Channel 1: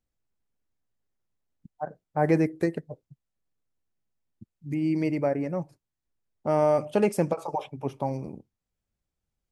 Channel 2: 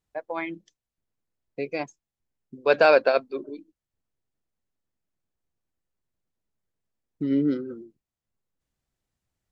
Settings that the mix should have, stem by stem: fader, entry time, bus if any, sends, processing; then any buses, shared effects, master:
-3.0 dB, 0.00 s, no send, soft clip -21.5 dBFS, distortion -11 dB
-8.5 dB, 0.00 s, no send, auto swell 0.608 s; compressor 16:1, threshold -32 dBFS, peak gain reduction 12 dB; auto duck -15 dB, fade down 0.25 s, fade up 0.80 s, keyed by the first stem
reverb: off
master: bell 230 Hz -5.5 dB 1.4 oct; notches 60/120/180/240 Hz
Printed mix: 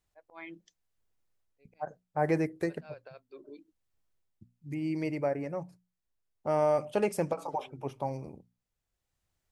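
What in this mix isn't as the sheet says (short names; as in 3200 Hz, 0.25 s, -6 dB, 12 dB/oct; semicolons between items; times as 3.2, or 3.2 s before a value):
stem 1: missing soft clip -21.5 dBFS, distortion -11 dB; stem 2 -8.5 dB -> +1.5 dB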